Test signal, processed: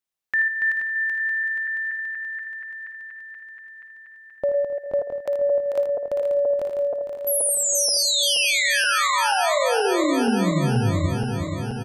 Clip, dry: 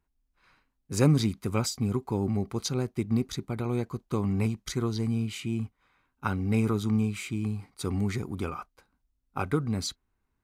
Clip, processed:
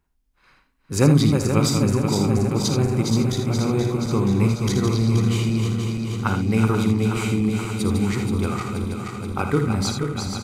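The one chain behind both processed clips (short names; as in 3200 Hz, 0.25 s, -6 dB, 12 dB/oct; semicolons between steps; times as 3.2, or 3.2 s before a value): regenerating reverse delay 0.239 s, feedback 82%, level -6 dB; early reflections 55 ms -10.5 dB, 80 ms -8.5 dB; gain +5.5 dB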